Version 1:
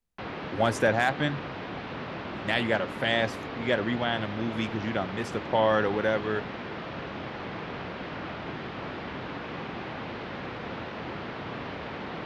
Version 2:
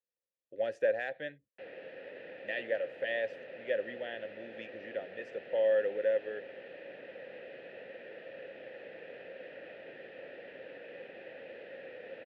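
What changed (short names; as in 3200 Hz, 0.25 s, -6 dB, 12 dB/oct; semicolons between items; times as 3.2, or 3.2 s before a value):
background: entry +1.40 s; master: add vowel filter e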